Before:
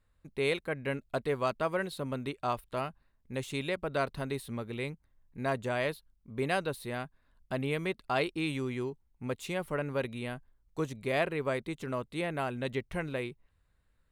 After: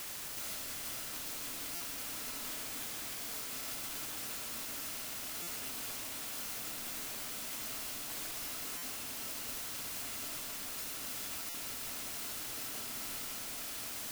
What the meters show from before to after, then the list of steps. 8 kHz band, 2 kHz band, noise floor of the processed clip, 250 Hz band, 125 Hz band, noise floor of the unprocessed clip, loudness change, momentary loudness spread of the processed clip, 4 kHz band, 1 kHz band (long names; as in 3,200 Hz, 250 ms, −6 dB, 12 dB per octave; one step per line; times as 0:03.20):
+14.5 dB, −8.5 dB, −42 dBFS, −15.5 dB, −19.0 dB, −72 dBFS, −4.0 dB, 1 LU, +2.0 dB, −11.5 dB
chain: samples in bit-reversed order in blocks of 256 samples
high-shelf EQ 10,000 Hz +10 dB
sample-and-hold tremolo
feedback delay with all-pass diffusion 1,716 ms, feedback 52%, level −11 dB
gate on every frequency bin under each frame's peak −25 dB weak
downward compressor 6 to 1, threshold −51 dBFS, peak gain reduction 18.5 dB
parametric band 270 Hz +6 dB 0.65 octaves
comb and all-pass reverb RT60 4.2 s, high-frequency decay 0.55×, pre-delay 25 ms, DRR −5.5 dB
bit-depth reduction 8 bits, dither triangular
buffer that repeats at 0:01.75/0:05.42/0:08.77/0:11.49, samples 256, times 8
level +5 dB